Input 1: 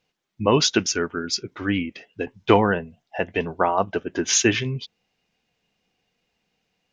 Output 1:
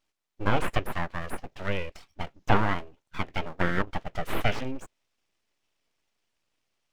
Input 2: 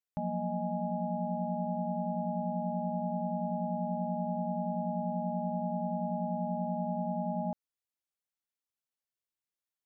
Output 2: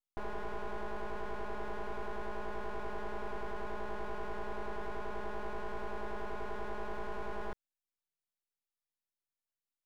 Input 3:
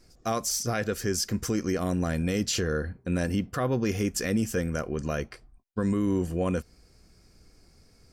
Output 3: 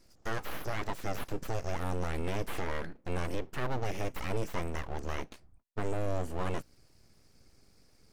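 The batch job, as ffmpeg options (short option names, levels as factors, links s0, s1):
-filter_complex "[0:a]aeval=exprs='abs(val(0))':c=same,acrossover=split=3100[s0][s1];[s1]acompressor=threshold=0.00631:ratio=4:attack=1:release=60[s2];[s0][s2]amix=inputs=2:normalize=0,volume=0.668"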